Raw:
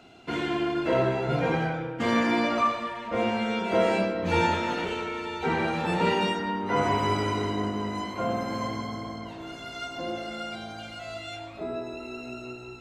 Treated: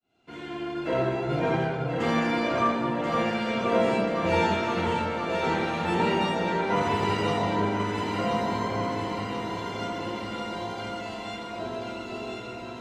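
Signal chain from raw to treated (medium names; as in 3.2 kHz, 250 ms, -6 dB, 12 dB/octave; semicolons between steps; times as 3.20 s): fade-in on the opening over 1.00 s; echo whose repeats swap between lows and highs 517 ms, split 1.2 kHz, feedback 79%, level -2 dB; trim -2 dB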